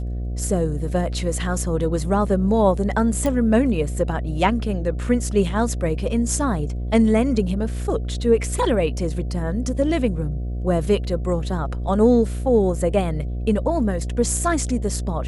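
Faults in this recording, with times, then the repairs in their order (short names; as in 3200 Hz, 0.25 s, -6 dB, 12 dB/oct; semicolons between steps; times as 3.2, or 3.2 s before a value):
buzz 60 Hz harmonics 12 -26 dBFS
3.26 pop -11 dBFS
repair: de-click; de-hum 60 Hz, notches 12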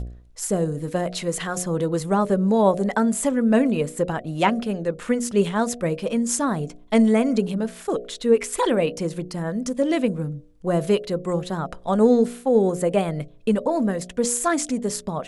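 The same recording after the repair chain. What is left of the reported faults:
none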